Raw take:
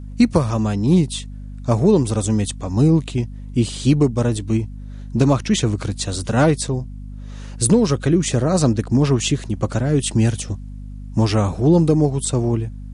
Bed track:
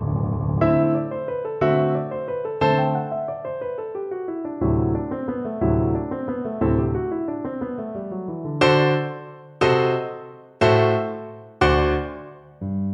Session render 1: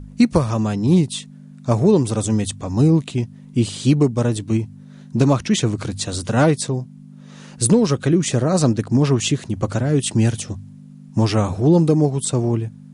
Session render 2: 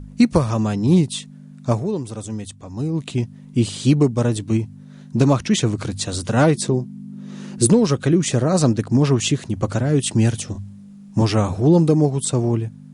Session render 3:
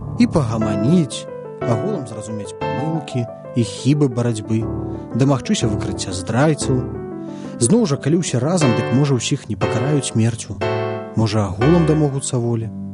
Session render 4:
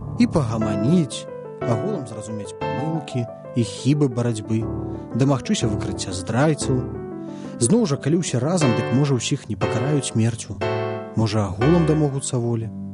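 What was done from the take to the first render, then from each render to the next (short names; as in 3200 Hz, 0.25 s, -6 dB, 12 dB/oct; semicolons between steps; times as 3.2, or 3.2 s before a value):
de-hum 50 Hz, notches 2
1.69–3.08 dip -9.5 dB, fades 0.15 s; 6.54–7.65 small resonant body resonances 220/350 Hz, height 13 dB -> 16 dB, ringing for 90 ms; 10.52–11.22 doubler 30 ms -3 dB
add bed track -4.5 dB
gain -3 dB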